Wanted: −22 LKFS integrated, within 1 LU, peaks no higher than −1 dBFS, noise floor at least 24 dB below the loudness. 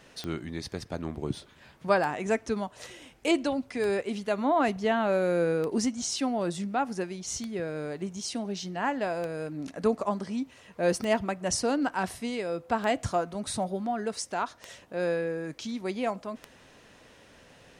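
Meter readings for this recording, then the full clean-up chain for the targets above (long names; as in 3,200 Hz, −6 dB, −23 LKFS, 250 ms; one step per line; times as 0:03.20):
number of clicks 10; integrated loudness −30.0 LKFS; sample peak −10.5 dBFS; target loudness −22.0 LKFS
→ click removal
level +8 dB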